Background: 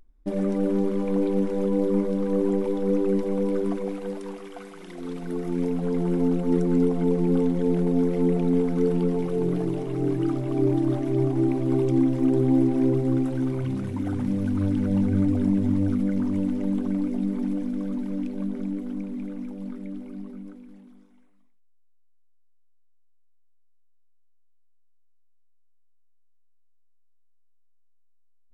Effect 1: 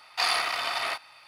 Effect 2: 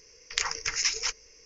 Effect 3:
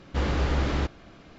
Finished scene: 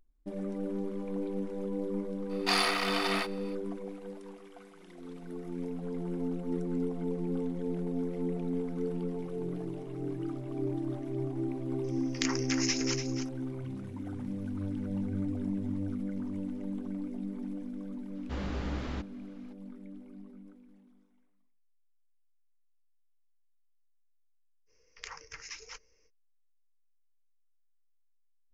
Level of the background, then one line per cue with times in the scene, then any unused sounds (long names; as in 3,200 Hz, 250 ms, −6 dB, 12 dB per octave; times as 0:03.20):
background −11.5 dB
0:02.29: mix in 1 −2.5 dB, fades 0.02 s
0:11.84: mix in 2 −5.5 dB + single-tap delay 291 ms −9 dB
0:18.15: mix in 3 −11 dB
0:24.66: mix in 2 −10.5 dB, fades 0.05 s + high-shelf EQ 2,600 Hz −10 dB